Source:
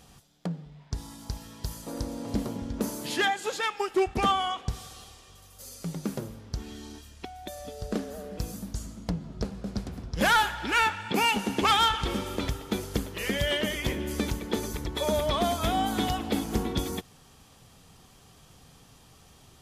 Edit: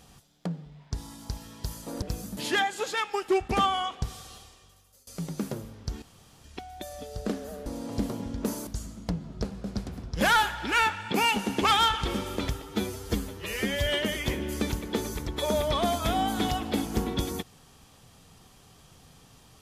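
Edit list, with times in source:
2.02–3.03 s: swap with 8.32–8.67 s
5.01–5.73 s: fade out, to -23.5 dB
6.68–7.10 s: room tone
12.62–13.45 s: stretch 1.5×

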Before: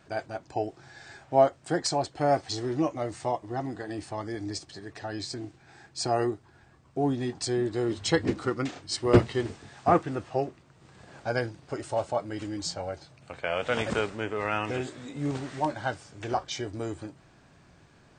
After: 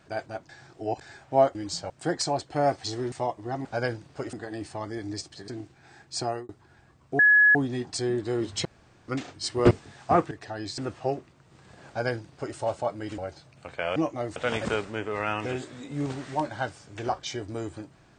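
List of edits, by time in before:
0.49–1.01 s: reverse
2.77–3.17 s: move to 13.61 s
4.85–5.32 s: move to 10.08 s
6.03–6.33 s: fade out
7.03 s: add tone 1.69 kHz -14 dBFS 0.36 s
8.13–8.56 s: room tone
9.19–9.48 s: delete
11.18–11.86 s: copy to 3.70 s
12.48–12.83 s: move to 1.55 s

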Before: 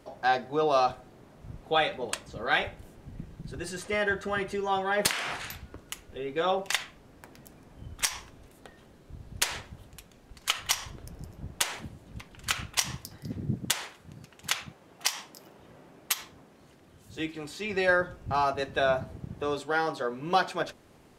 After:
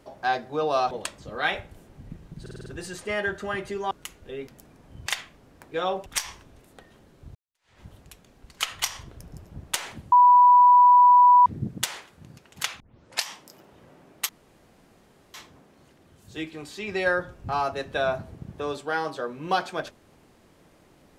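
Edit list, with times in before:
0.91–1.99 s: delete
3.49 s: stutter 0.05 s, 6 plays
4.74–5.78 s: delete
6.34–6.68 s: swap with 7.34–7.93 s
9.22–9.68 s: fade in exponential
11.99–13.33 s: bleep 984 Hz -11 dBFS
14.67 s: tape start 0.45 s
16.16 s: insert room tone 1.05 s

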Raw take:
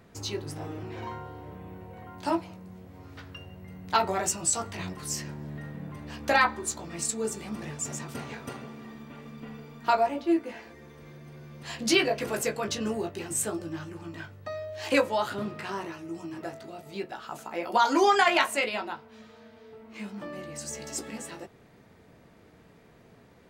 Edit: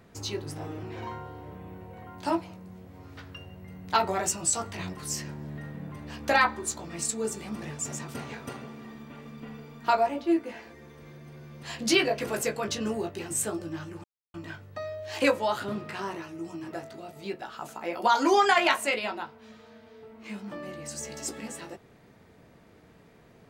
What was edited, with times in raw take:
14.04 s: insert silence 0.30 s

